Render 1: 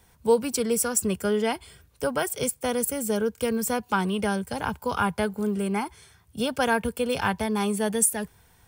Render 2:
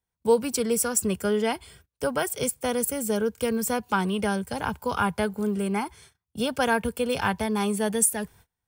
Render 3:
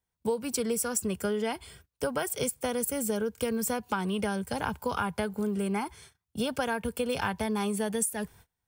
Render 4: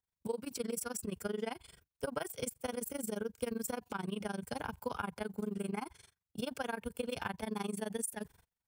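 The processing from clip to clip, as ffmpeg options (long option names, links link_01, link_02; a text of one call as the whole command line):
ffmpeg -i in.wav -af "agate=range=-28dB:threshold=-51dB:ratio=16:detection=peak" out.wav
ffmpeg -i in.wav -af "acompressor=threshold=-26dB:ratio=6" out.wav
ffmpeg -i in.wav -af "tremolo=f=23:d=0.947,volume=-4.5dB" out.wav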